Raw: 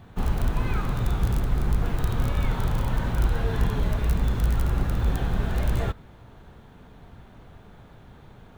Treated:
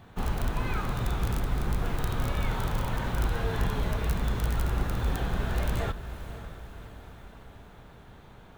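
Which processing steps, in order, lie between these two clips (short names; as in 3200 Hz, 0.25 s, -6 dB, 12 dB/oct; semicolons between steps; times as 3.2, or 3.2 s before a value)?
low shelf 340 Hz -5.5 dB; diffused feedback echo 0.552 s, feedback 56%, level -12.5 dB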